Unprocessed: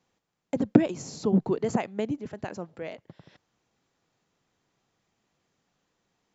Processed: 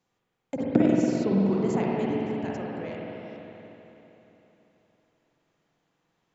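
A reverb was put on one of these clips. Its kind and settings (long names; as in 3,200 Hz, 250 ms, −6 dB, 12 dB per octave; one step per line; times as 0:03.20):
spring reverb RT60 3.6 s, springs 46/56 ms, chirp 60 ms, DRR −4.5 dB
level −4 dB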